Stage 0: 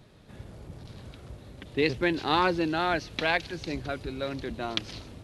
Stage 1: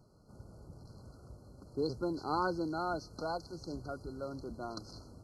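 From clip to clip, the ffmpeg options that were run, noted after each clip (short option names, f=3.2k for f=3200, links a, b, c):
-af "afftfilt=real='re*(1-between(b*sr/4096,1500,4100))':imag='im*(1-between(b*sr/4096,1500,4100))':win_size=4096:overlap=0.75,volume=-8dB"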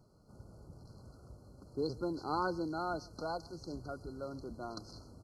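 -af "aecho=1:1:136:0.0668,volume=-1.5dB"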